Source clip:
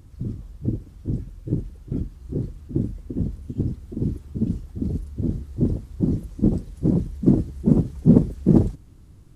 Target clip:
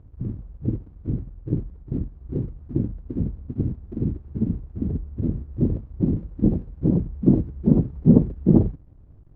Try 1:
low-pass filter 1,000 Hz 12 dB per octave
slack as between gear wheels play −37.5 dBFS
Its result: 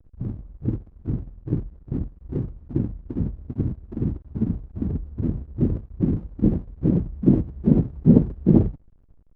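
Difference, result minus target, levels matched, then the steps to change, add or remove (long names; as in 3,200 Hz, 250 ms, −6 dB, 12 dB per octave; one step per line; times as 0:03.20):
slack as between gear wheels: distortion +10 dB
change: slack as between gear wheels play −48 dBFS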